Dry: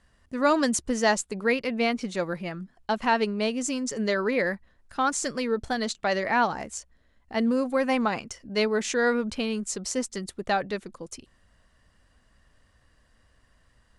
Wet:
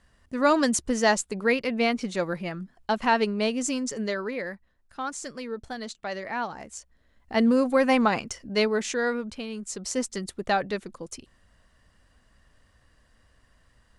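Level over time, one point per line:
0:03.78 +1 dB
0:04.41 −7.5 dB
0:06.50 −7.5 dB
0:07.34 +3.5 dB
0:08.38 +3.5 dB
0:09.47 −7 dB
0:10.01 +1 dB

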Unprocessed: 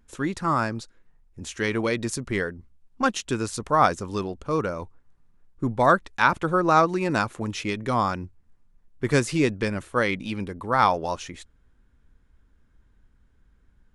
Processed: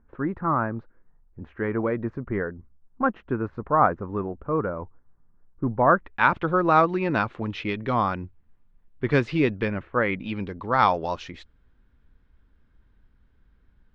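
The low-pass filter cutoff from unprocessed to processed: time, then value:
low-pass filter 24 dB per octave
0:05.87 1,600 Hz
0:06.30 3,600 Hz
0:09.60 3,600 Hz
0:09.96 2,100 Hz
0:10.50 4,600 Hz

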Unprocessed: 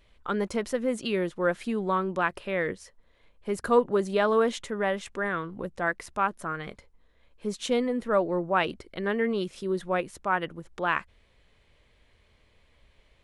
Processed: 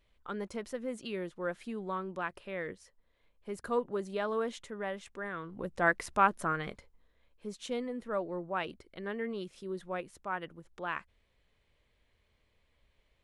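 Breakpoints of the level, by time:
0:05.34 −10 dB
0:05.87 +1 dB
0:06.47 +1 dB
0:07.49 −10 dB

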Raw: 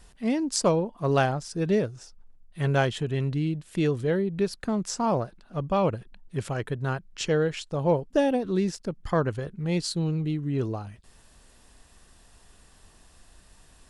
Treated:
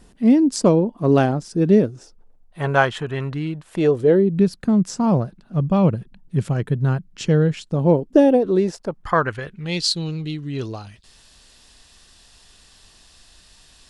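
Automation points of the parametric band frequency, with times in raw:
parametric band +13 dB 1.8 octaves
0:01.88 260 Hz
0:02.84 1,200 Hz
0:03.56 1,200 Hz
0:04.48 170 Hz
0:07.60 170 Hz
0:08.73 640 Hz
0:09.83 4,200 Hz

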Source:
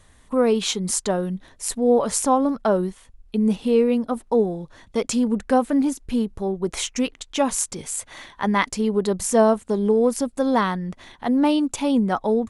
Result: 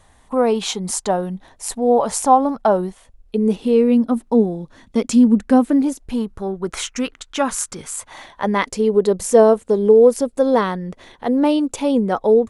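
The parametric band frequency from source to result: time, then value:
parametric band +9.5 dB 0.71 octaves
0:02.80 800 Hz
0:04.08 240 Hz
0:05.57 240 Hz
0:06.36 1,400 Hz
0:07.83 1,400 Hz
0:08.54 470 Hz

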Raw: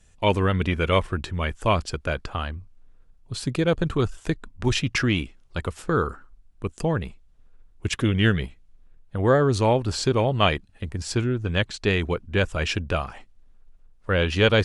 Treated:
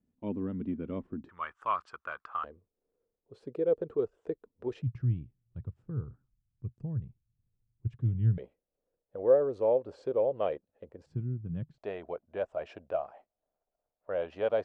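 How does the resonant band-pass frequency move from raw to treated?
resonant band-pass, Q 5.1
250 Hz
from 0:01.29 1,200 Hz
from 0:02.44 460 Hz
from 0:04.82 120 Hz
from 0:08.38 520 Hz
from 0:11.06 150 Hz
from 0:11.78 640 Hz

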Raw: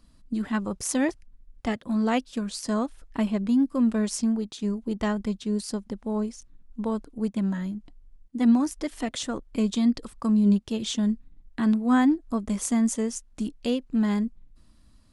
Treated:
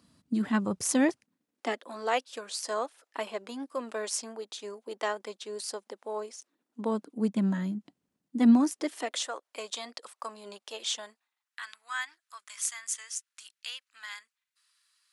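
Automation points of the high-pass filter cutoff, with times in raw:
high-pass filter 24 dB per octave
0:00.82 100 Hz
0:01.94 440 Hz
0:06.29 440 Hz
0:07.24 160 Hz
0:08.47 160 Hz
0:09.34 570 Hz
0:10.97 570 Hz
0:11.64 1,400 Hz

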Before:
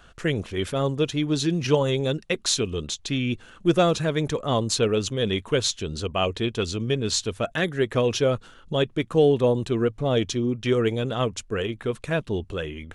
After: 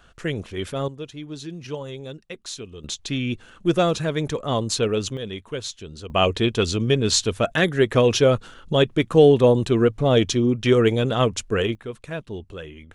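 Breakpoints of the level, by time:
−2 dB
from 0:00.88 −11 dB
from 0:02.84 0 dB
from 0:05.17 −7.5 dB
from 0:06.10 +5 dB
from 0:11.75 −6 dB

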